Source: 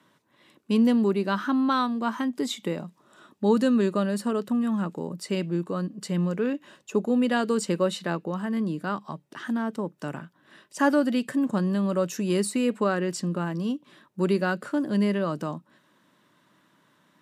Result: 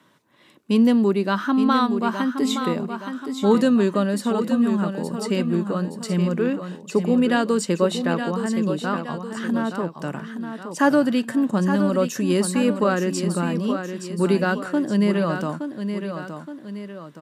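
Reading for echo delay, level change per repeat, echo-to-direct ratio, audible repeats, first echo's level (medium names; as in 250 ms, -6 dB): 870 ms, -6.0 dB, -7.0 dB, 2, -8.0 dB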